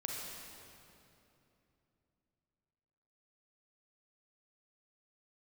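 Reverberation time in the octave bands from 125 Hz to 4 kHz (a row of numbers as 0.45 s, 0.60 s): 3.8 s, 3.7 s, 3.1 s, 2.7 s, 2.4 s, 2.2 s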